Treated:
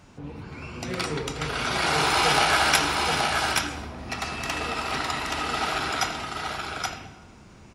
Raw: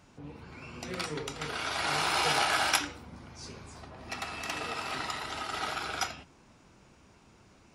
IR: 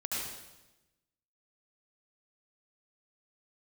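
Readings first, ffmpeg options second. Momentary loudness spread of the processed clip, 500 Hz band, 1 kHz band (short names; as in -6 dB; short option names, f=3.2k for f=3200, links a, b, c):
16 LU, +8.5 dB, +8.0 dB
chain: -filter_complex "[0:a]acontrast=78,aecho=1:1:825:0.668,asplit=2[a][b];[1:a]atrim=start_sample=2205,lowshelf=f=210:g=12,highshelf=f=5.5k:g=-12[c];[b][c]afir=irnorm=-1:irlink=0,volume=-12.5dB[d];[a][d]amix=inputs=2:normalize=0,volume=-2dB"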